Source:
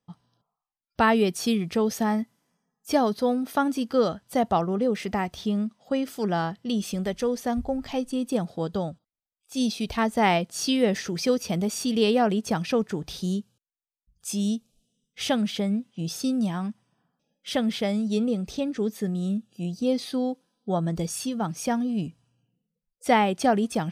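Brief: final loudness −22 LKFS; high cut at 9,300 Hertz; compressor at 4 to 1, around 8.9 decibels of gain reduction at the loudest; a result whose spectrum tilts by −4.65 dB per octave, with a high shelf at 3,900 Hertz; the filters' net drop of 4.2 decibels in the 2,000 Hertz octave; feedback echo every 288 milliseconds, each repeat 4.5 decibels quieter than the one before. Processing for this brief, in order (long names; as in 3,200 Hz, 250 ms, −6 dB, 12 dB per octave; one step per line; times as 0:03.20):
low-pass filter 9,300 Hz
parametric band 2,000 Hz −6.5 dB
high-shelf EQ 3,900 Hz +5 dB
downward compressor 4 to 1, threshold −27 dBFS
repeating echo 288 ms, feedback 60%, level −4.5 dB
level +8 dB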